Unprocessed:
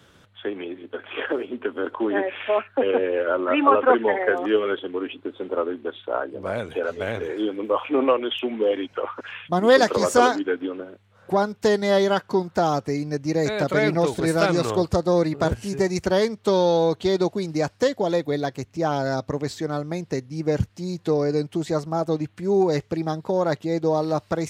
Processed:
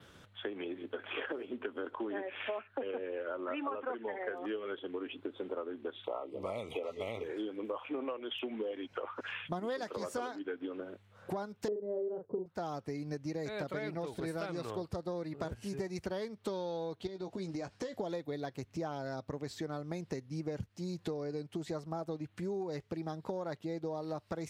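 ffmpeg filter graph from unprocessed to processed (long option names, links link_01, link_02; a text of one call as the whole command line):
ffmpeg -i in.wav -filter_complex "[0:a]asettb=1/sr,asplit=3[link_01][link_02][link_03];[link_01]atrim=end=6.044[link_04];[link_02]atrim=start=6.04:end=7.24,asetpts=PTS-STARTPTS,afade=type=in:duration=0.004:curve=qsin,afade=type=out:start_time=1.196:duration=0.004:curve=qsin,asuperstop=centerf=1600:order=20:qfactor=2.7,lowshelf=frequency=430:gain=-6,acontrast=54[link_05];[link_03]atrim=start=7.236[link_06];[link_04][link_05]acrossfade=duration=0.004:curve1=hsin:curve2=qsin[link_07];[link_07][link_06]acrossfade=duration=0.004:curve1=qsin:curve2=hsin,asettb=1/sr,asplit=3[link_08][link_09][link_10];[link_08]atrim=end=11.684[link_11];[link_09]atrim=start=11.68:end=12.46,asetpts=PTS-STARTPTS,afade=type=in:duration=0.004:curve=qsin,afade=type=out:start_time=0.776:duration=0.004:curve=qsin,lowpass=frequency=460:width_type=q:width=5.4,asplit=2[link_12][link_13];[link_13]adelay=38,volume=-5dB[link_14];[link_12][link_14]amix=inputs=2:normalize=0,atrim=end_sample=34398[link_15];[link_10]atrim=start=12.456[link_16];[link_11][link_15]acrossfade=duration=0.004:curve1=hsin:curve2=qsin[link_17];[link_17][link_16]acrossfade=duration=0.004:curve1=qsin:curve2=hsin,asettb=1/sr,asplit=3[link_18][link_19][link_20];[link_18]atrim=end=17.074[link_21];[link_19]atrim=start=17.07:end=17.94,asetpts=PTS-STARTPTS,afade=type=in:duration=0.004:curve=qsin,afade=type=out:start_time=0.866:duration=0.004:curve=qsin,lowpass=8600,acompressor=threshold=-31dB:ratio=4:attack=3.2:release=140:knee=1:detection=peak,asplit=2[link_22][link_23];[link_23]adelay=16,volume=-8.5dB[link_24];[link_22][link_24]amix=inputs=2:normalize=0,atrim=end_sample=38367[link_25];[link_20]atrim=start=17.936[link_26];[link_21][link_25]acrossfade=duration=0.004:curve1=hsin:curve2=qsin[link_27];[link_27][link_26]acrossfade=duration=0.004:curve1=qsin:curve2=hsin,adynamicequalizer=threshold=0.00224:dfrequency=6900:dqfactor=2.1:tfrequency=6900:tqfactor=2.1:attack=5:release=100:ratio=0.375:range=3.5:mode=cutabove:tftype=bell,acompressor=threshold=-32dB:ratio=8,volume=-3.5dB" out.wav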